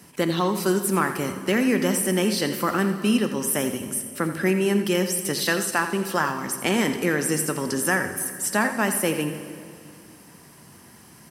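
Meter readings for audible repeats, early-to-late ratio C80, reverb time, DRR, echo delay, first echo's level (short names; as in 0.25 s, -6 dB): 1, 8.5 dB, 2.2 s, 7.0 dB, 85 ms, -11.5 dB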